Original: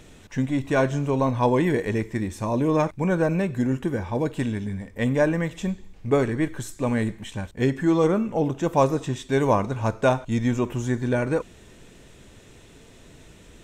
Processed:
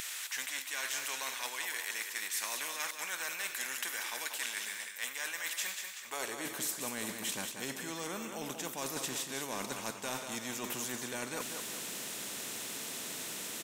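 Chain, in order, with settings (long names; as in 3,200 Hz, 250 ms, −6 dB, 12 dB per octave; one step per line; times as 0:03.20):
RIAA equalisation recording
high-pass filter sweep 1,800 Hz → 210 Hz, 0:05.95–0:06.52
reversed playback
downward compressor, threshold −32 dBFS, peak gain reduction 17 dB
reversed playback
repeating echo 188 ms, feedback 32%, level −11.5 dB
every bin compressed towards the loudest bin 2 to 1
level −1.5 dB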